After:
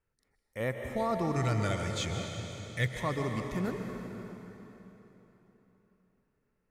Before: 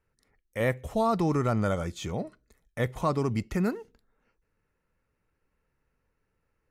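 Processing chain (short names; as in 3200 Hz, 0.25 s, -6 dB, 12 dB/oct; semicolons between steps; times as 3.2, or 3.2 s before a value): 1.36–3 ten-band EQ 125 Hz +7 dB, 250 Hz -5 dB, 1000 Hz -8 dB, 2000 Hz +10 dB, 4000 Hz +9 dB, 8000 Hz +8 dB; plate-style reverb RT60 3.7 s, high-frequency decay 0.85×, pre-delay 0.115 s, DRR 3 dB; gain -6.5 dB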